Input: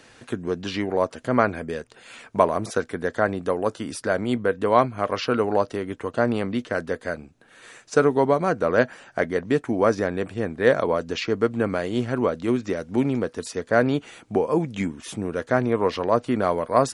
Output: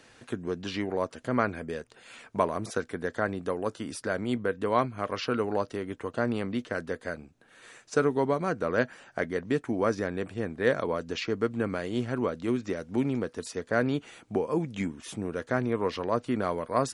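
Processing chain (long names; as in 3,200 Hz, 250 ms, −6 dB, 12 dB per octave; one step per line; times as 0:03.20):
dynamic equaliser 690 Hz, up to −4 dB, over −29 dBFS, Q 1.3
level −5 dB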